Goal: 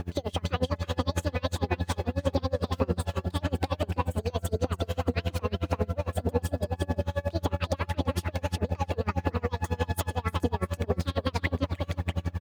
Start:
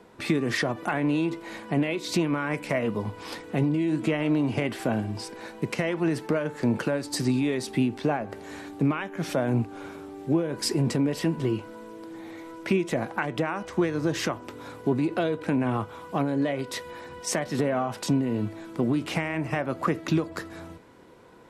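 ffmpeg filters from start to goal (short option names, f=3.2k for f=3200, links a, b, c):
-filter_complex "[0:a]bass=f=250:g=3,treble=f=4k:g=-4,acompressor=threshold=-37dB:ratio=3,aeval=exprs='val(0)+0.0126*(sin(2*PI*50*n/s)+sin(2*PI*2*50*n/s)/2+sin(2*PI*3*50*n/s)/3+sin(2*PI*4*50*n/s)/4+sin(2*PI*5*50*n/s)/5)':c=same,asplit=2[a][b];[b]adelay=582,lowpass=f=4.8k:p=1,volume=-3dB,asplit=2[c][d];[d]adelay=582,lowpass=f=4.8k:p=1,volume=0.37,asplit=2[e][f];[f]adelay=582,lowpass=f=4.8k:p=1,volume=0.37,asplit=2[g][h];[h]adelay=582,lowpass=f=4.8k:p=1,volume=0.37,asplit=2[i][j];[j]adelay=582,lowpass=f=4.8k:p=1,volume=0.37[k];[c][e][g][i][k]amix=inputs=5:normalize=0[l];[a][l]amix=inputs=2:normalize=0,aphaser=in_gain=1:out_gain=1:delay=3.2:decay=0.31:speed=1:type=sinusoidal,asetrate=76440,aresample=44100,acrusher=bits=10:mix=0:aa=0.000001,aeval=exprs='val(0)*pow(10,-30*(0.5-0.5*cos(2*PI*11*n/s))/20)':c=same,volume=8dB"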